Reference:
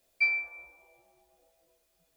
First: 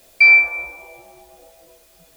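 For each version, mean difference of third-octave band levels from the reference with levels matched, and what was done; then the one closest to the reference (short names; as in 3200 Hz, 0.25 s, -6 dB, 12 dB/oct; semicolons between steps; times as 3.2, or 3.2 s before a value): 1.5 dB: maximiser +23.5 dB; gain -3 dB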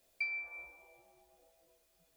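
4.0 dB: compressor 5:1, threshold -36 dBFS, peak gain reduction 13 dB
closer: first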